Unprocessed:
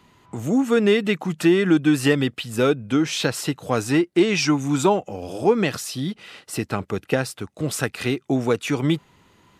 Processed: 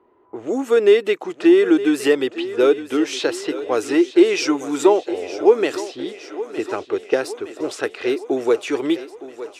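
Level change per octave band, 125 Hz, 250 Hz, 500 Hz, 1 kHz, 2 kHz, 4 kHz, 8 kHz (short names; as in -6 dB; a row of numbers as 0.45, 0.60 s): under -15 dB, +1.0 dB, +5.5 dB, +0.5 dB, -0.5 dB, -1.0 dB, -3.0 dB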